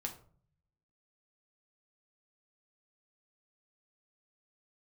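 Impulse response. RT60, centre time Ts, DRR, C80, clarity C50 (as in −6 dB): 0.50 s, 13 ms, 2.0 dB, 15.5 dB, 11.0 dB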